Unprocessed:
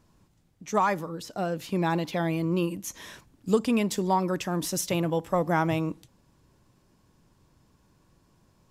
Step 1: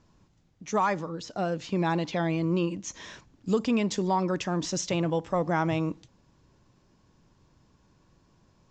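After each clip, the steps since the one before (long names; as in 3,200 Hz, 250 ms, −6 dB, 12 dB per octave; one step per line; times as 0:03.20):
Butterworth low-pass 7,300 Hz 72 dB per octave
in parallel at +2.5 dB: brickwall limiter −19 dBFS, peak gain reduction 8 dB
on the sum: level −7 dB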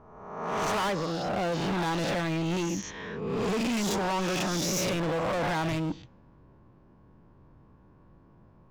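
peak hold with a rise ahead of every peak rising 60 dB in 1.12 s
low-pass that shuts in the quiet parts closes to 1,300 Hz, open at −20 dBFS
gain into a clipping stage and back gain 30 dB
level +3.5 dB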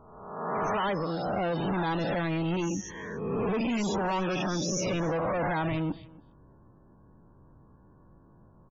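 spectral peaks only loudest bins 64
single-tap delay 280 ms −22.5 dB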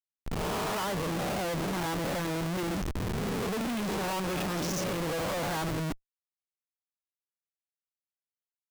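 comparator with hysteresis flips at −34.5 dBFS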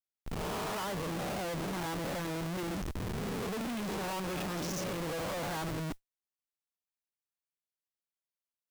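noise that follows the level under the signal 27 dB
level −4.5 dB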